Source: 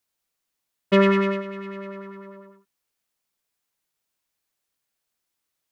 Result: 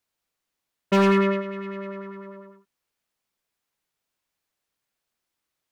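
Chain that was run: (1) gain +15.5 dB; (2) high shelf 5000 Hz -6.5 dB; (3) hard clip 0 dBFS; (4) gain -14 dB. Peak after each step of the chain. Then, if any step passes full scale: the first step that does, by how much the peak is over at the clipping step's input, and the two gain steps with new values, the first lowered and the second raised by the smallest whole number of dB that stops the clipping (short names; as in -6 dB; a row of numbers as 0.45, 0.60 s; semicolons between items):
+8.0, +8.0, 0.0, -14.0 dBFS; step 1, 8.0 dB; step 1 +7.5 dB, step 4 -6 dB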